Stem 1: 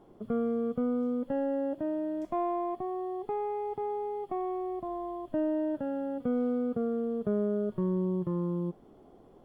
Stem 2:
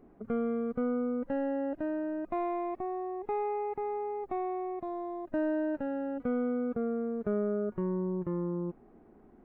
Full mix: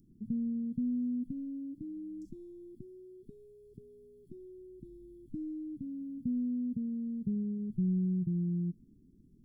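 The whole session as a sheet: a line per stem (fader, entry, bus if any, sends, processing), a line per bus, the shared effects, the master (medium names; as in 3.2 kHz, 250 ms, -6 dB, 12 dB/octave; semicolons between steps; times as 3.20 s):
+1.0 dB, 0.00 s, no send, resonances exaggerated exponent 1.5
-15.0 dB, 0.00 s, no send, none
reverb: none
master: inverse Chebyshev band-stop 620–2100 Hz, stop band 60 dB; treble shelf 2.5 kHz +12 dB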